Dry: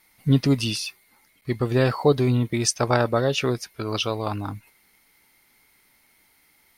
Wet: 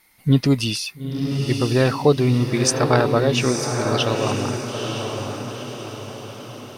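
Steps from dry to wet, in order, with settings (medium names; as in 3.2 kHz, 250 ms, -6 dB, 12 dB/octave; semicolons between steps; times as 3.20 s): echo that smears into a reverb 923 ms, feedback 50%, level -5 dB; trim +2.5 dB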